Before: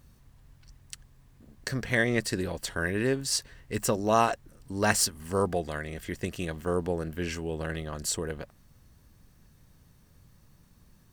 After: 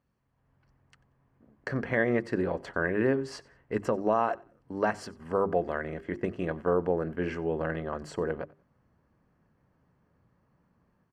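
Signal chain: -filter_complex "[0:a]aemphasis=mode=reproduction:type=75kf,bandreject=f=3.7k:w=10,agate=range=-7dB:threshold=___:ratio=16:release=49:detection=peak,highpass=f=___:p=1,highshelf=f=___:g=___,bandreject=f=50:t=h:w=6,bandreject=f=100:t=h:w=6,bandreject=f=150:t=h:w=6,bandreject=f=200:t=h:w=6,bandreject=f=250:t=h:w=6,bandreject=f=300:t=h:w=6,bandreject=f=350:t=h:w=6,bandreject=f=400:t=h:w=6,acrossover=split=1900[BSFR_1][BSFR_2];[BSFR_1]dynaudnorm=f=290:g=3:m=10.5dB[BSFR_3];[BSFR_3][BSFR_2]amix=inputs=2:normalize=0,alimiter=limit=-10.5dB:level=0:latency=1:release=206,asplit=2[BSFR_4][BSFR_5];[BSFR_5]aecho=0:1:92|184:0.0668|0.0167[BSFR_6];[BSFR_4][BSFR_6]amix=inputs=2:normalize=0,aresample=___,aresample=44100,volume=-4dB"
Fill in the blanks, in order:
-47dB, 280, 6k, -10, 32000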